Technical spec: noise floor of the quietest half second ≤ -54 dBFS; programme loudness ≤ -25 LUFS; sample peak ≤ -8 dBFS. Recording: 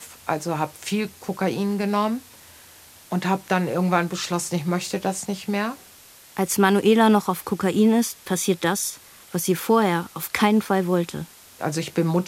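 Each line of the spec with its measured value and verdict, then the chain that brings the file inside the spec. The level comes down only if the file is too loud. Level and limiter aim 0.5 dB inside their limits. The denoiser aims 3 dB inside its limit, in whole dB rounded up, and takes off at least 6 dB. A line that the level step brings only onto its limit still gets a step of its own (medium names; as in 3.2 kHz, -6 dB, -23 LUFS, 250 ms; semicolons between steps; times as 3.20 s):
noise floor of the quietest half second -49 dBFS: fail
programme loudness -23.0 LUFS: fail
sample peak -3.0 dBFS: fail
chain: noise reduction 6 dB, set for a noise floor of -49 dBFS; trim -2.5 dB; peak limiter -8.5 dBFS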